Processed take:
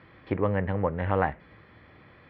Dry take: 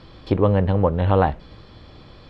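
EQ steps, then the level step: high-pass 83 Hz; resonant low-pass 2 kHz, resonance Q 3.9; -8.5 dB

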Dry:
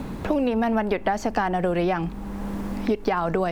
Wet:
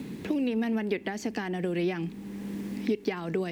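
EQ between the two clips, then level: high-pass 160 Hz 12 dB/octave; high-order bell 890 Hz -12.5 dB; -3.0 dB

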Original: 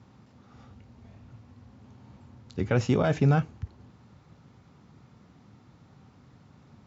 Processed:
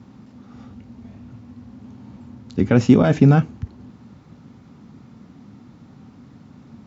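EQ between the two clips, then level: peaking EQ 240 Hz +10 dB 0.85 oct; +5.5 dB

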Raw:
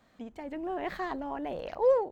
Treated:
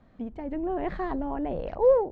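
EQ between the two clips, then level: distance through air 81 m; tilt EQ -3 dB/octave; +1.5 dB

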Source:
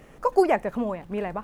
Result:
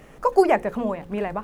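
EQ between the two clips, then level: hum notches 60/120/180/240/300/360/420/480/540 Hz; +3.0 dB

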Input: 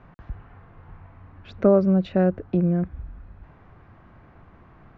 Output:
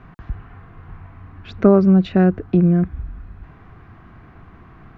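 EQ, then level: peaking EQ 560 Hz -10 dB 0.34 oct; band-stop 880 Hz, Q 12; +7.0 dB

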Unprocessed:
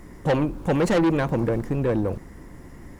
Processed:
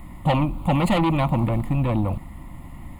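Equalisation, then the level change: static phaser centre 1.6 kHz, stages 6; +6.0 dB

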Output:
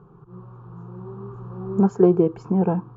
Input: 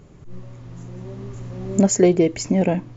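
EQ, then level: high-pass 50 Hz; resonant low-pass 1.3 kHz, resonance Q 2.2; static phaser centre 400 Hz, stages 8; 0.0 dB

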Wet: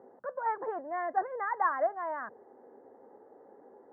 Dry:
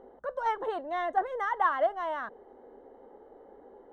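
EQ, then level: Chebyshev band-pass 100–1900 Hz, order 4; -2.0 dB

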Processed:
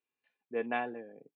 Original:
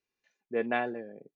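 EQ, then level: cabinet simulation 170–3100 Hz, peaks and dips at 200 Hz -7 dB, 370 Hz -7 dB, 600 Hz -7 dB, 1.4 kHz -5 dB, 2 kHz -6 dB; 0.0 dB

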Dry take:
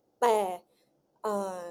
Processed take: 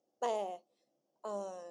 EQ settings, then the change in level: cabinet simulation 310–6900 Hz, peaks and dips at 310 Hz -4 dB, 440 Hz -9 dB, 910 Hz -9 dB, 1.4 kHz -6 dB, 2.3 kHz -8 dB, 4 kHz -9 dB; peaking EQ 1.6 kHz -6.5 dB 0.89 oct; -3.0 dB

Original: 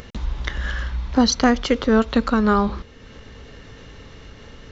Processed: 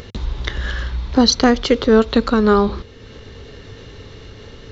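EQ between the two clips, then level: fifteen-band graphic EQ 100 Hz +7 dB, 400 Hz +7 dB, 4 kHz +6 dB; +1.0 dB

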